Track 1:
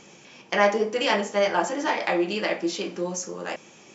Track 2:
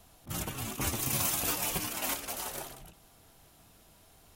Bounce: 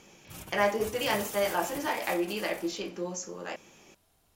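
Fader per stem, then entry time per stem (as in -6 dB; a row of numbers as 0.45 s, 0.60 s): -6.0 dB, -9.5 dB; 0.00 s, 0.00 s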